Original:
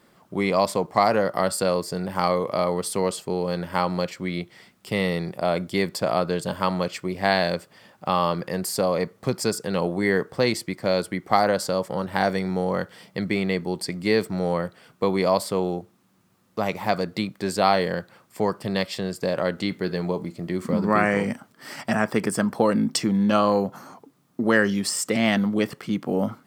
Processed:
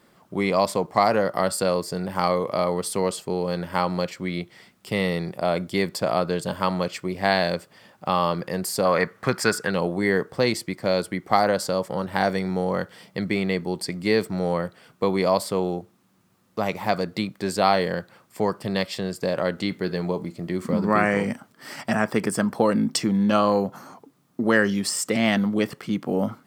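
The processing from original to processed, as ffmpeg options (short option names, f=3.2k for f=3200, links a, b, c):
-filter_complex "[0:a]asettb=1/sr,asplit=3[a][b][c];[a]atrim=end=8.854[d];[b]atrim=start=8.85:end=9.71,asetpts=PTS-STARTPTS,afade=t=in:d=0.004:c=qsin,afade=t=out:st=0.856:d=0.004:c=qsin,equalizer=f=1.6k:w=1.1:g=14[e];[c]atrim=start=9.706[f];[d][e]acrossfade=d=0.004:c1=hsin:c2=qsin[g];[g][f]acrossfade=d=0.004:c1=qsin:c2=hsin"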